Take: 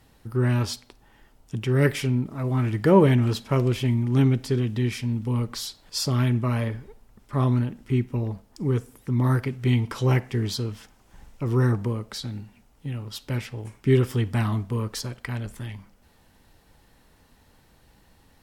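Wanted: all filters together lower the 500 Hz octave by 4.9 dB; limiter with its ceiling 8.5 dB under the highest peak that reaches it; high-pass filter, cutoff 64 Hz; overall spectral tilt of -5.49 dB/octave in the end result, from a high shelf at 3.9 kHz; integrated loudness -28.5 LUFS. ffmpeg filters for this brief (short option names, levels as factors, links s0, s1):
-af "highpass=64,equalizer=f=500:t=o:g=-7,highshelf=f=3900:g=6.5,volume=0.944,alimiter=limit=0.126:level=0:latency=1"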